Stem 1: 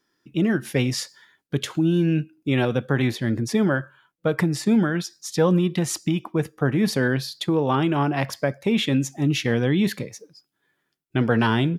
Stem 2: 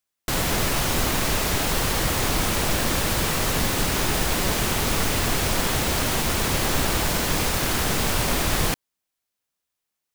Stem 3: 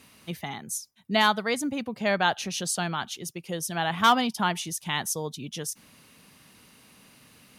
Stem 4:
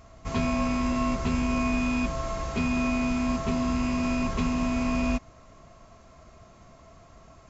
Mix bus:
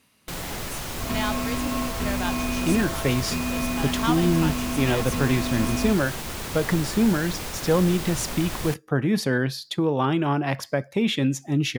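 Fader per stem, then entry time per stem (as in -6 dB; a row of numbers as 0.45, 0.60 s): -1.5, -9.5, -8.0, -2.0 dB; 2.30, 0.00, 0.00, 0.75 s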